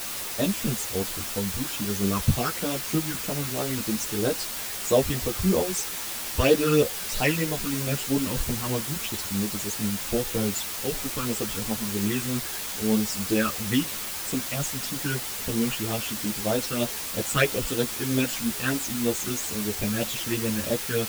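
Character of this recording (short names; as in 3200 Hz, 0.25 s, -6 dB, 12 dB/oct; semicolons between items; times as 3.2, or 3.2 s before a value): phasing stages 12, 3.1 Hz, lowest notch 630–2200 Hz; a quantiser's noise floor 6-bit, dither triangular; a shimmering, thickened sound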